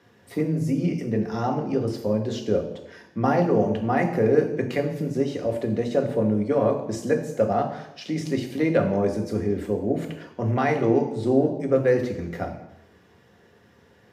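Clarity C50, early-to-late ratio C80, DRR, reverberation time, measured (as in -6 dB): 9.0 dB, 11.5 dB, 2.5 dB, 0.85 s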